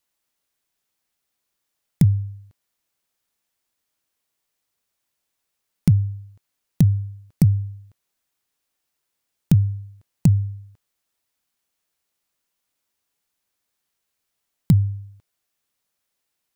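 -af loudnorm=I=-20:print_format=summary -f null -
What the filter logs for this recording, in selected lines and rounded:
Input Integrated:    -21.1 LUFS
Input True Peak:      -4.3 dBTP
Input LRA:             3.2 LU
Input Threshold:     -33.0 LUFS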